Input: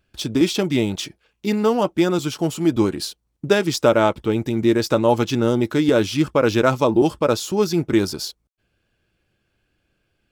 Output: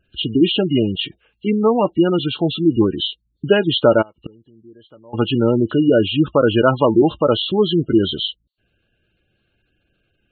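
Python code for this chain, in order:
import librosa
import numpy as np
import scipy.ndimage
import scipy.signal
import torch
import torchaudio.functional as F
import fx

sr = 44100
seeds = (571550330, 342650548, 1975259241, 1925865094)

y = fx.freq_compress(x, sr, knee_hz=2700.0, ratio=4.0)
y = fx.spec_gate(y, sr, threshold_db=-20, keep='strong')
y = fx.gate_flip(y, sr, shuts_db=-20.0, range_db=-30, at=(4.01, 5.13), fade=0.02)
y = F.gain(torch.from_numpy(y), 3.0).numpy()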